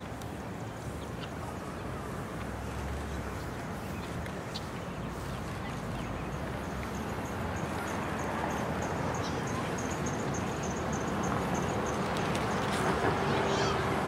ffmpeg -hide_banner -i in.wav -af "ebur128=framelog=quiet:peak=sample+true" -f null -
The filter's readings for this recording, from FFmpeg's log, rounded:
Integrated loudness:
  I:         -34.2 LUFS
  Threshold: -44.2 LUFS
Loudness range:
  LRA:         7.0 LU
  Threshold: -54.7 LUFS
  LRA low:   -38.3 LUFS
  LRA high:  -31.3 LUFS
Sample peak:
  Peak:      -15.6 dBFS
True peak:
  Peak:      -15.6 dBFS